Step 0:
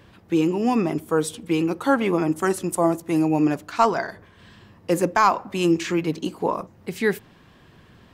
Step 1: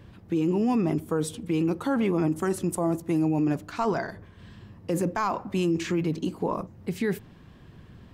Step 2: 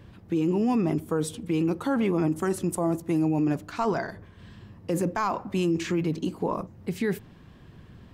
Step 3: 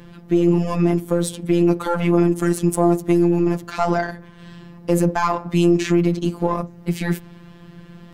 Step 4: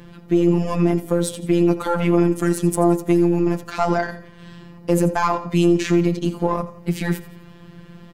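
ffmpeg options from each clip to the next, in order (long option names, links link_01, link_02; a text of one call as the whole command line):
ffmpeg -i in.wav -af "lowshelf=frequency=300:gain=11,alimiter=limit=-12.5dB:level=0:latency=1:release=21,volume=-5dB" out.wav
ffmpeg -i in.wav -af anull out.wav
ffmpeg -i in.wav -filter_complex "[0:a]asplit=2[link_01][link_02];[link_02]aeval=exprs='clip(val(0),-1,0.0106)':channel_layout=same,volume=-8dB[link_03];[link_01][link_03]amix=inputs=2:normalize=0,afftfilt=real='hypot(re,im)*cos(PI*b)':imag='0':win_size=1024:overlap=0.75,volume=8.5dB" out.wav
ffmpeg -i in.wav -af "aecho=1:1:85|170|255|340:0.178|0.0711|0.0285|0.0114" out.wav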